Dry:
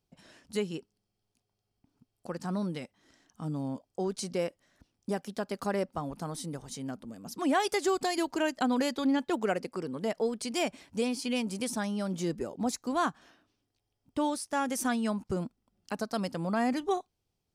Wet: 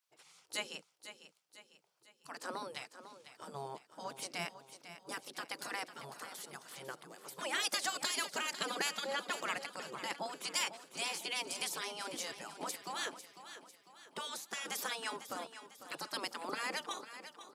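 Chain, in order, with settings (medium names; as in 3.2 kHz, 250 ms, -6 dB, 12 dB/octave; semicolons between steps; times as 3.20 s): elliptic high-pass 170 Hz; spectral gate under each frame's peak -15 dB weak; feedback delay 499 ms, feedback 46%, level -12 dB; trim +4 dB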